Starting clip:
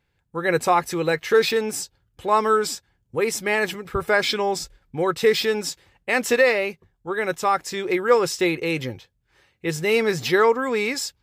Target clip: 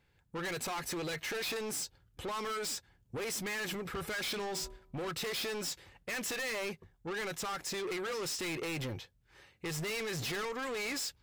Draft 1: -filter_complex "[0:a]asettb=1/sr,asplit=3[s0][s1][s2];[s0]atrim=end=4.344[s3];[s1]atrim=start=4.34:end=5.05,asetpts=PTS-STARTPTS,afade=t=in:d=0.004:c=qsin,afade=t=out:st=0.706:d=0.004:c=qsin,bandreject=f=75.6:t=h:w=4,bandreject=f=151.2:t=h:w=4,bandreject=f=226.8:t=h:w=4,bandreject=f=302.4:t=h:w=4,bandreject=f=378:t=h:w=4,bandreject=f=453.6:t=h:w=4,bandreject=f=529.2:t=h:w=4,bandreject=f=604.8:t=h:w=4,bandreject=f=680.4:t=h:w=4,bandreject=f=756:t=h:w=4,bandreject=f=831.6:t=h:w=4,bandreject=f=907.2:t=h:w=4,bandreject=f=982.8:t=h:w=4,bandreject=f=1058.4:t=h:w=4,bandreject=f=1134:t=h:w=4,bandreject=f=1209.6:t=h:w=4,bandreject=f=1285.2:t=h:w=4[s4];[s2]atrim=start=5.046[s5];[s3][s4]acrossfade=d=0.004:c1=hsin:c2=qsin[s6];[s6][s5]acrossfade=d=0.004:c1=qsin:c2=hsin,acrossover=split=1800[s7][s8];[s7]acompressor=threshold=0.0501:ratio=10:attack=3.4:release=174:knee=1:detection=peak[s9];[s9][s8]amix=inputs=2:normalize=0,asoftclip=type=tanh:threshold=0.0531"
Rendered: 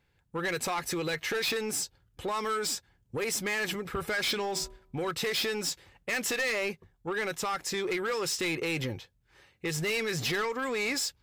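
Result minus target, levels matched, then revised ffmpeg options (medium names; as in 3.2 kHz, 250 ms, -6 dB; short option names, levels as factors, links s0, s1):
saturation: distortion -6 dB
-filter_complex "[0:a]asettb=1/sr,asplit=3[s0][s1][s2];[s0]atrim=end=4.344[s3];[s1]atrim=start=4.34:end=5.05,asetpts=PTS-STARTPTS,afade=t=in:d=0.004:c=qsin,afade=t=out:st=0.706:d=0.004:c=qsin,bandreject=f=75.6:t=h:w=4,bandreject=f=151.2:t=h:w=4,bandreject=f=226.8:t=h:w=4,bandreject=f=302.4:t=h:w=4,bandreject=f=378:t=h:w=4,bandreject=f=453.6:t=h:w=4,bandreject=f=529.2:t=h:w=4,bandreject=f=604.8:t=h:w=4,bandreject=f=680.4:t=h:w=4,bandreject=f=756:t=h:w=4,bandreject=f=831.6:t=h:w=4,bandreject=f=907.2:t=h:w=4,bandreject=f=982.8:t=h:w=4,bandreject=f=1058.4:t=h:w=4,bandreject=f=1134:t=h:w=4,bandreject=f=1209.6:t=h:w=4,bandreject=f=1285.2:t=h:w=4[s4];[s2]atrim=start=5.046[s5];[s3][s4]acrossfade=d=0.004:c1=hsin:c2=qsin[s6];[s6][s5]acrossfade=d=0.004:c1=qsin:c2=hsin,acrossover=split=1800[s7][s8];[s7]acompressor=threshold=0.0501:ratio=10:attack=3.4:release=174:knee=1:detection=peak[s9];[s9][s8]amix=inputs=2:normalize=0,asoftclip=type=tanh:threshold=0.0178"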